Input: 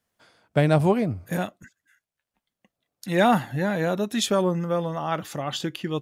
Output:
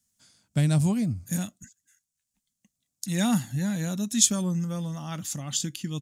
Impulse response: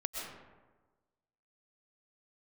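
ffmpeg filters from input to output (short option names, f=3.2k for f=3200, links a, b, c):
-af "firequalizer=gain_entry='entry(230,0);entry(390,-16);entry(6900,13);entry(12000,4)':delay=0.05:min_phase=1"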